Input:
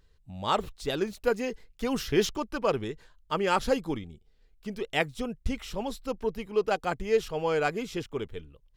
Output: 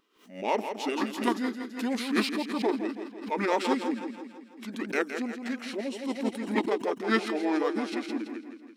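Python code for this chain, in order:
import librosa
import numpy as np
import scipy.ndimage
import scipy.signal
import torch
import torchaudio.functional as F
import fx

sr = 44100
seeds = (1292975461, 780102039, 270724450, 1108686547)

p1 = fx.rattle_buzz(x, sr, strikes_db=-31.0, level_db=-28.0)
p2 = 10.0 ** (-27.0 / 20.0) * np.tanh(p1 / 10.0 ** (-27.0 / 20.0))
p3 = p1 + F.gain(torch.from_numpy(p2), -4.0).numpy()
p4 = fx.brickwall_highpass(p3, sr, low_hz=210.0)
p5 = p4 + fx.echo_feedback(p4, sr, ms=165, feedback_pct=54, wet_db=-8.0, dry=0)
p6 = fx.formant_shift(p5, sr, semitones=-5)
p7 = fx.pre_swell(p6, sr, db_per_s=120.0)
y = F.gain(torch.from_numpy(p7), -3.0).numpy()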